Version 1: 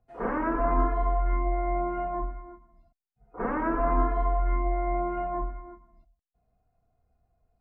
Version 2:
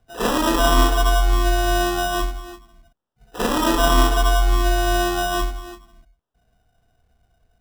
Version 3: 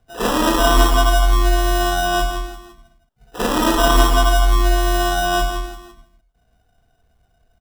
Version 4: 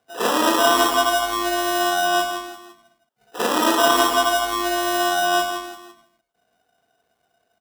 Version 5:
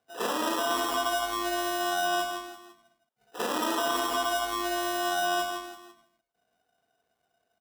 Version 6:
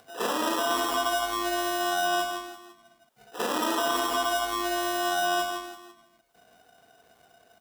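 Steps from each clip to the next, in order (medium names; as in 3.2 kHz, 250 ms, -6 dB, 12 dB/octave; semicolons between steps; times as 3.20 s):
sample-and-hold 20×; trim +8.5 dB
loudspeakers at several distances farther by 19 m -12 dB, 56 m -7 dB; trim +1.5 dB
high-pass 320 Hz 12 dB/octave
peak limiter -10 dBFS, peak gain reduction 7 dB; trim -7.5 dB
upward compressor, threshold -45 dBFS; trim +1.5 dB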